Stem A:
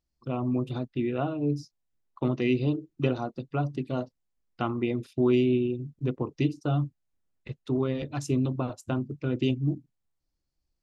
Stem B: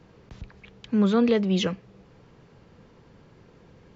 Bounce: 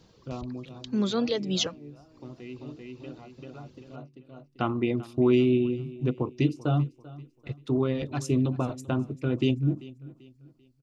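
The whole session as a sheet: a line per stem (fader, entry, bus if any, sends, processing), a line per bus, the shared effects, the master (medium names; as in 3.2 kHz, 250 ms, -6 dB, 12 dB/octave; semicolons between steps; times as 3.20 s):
+1.5 dB, 0.00 s, no send, echo send -19.5 dB, auto duck -18 dB, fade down 0.85 s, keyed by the second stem
-4.5 dB, 0.00 s, no send, no echo send, reverb removal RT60 0.82 s; resonant high shelf 3 kHz +9.5 dB, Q 1.5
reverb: none
echo: feedback delay 390 ms, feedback 36%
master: none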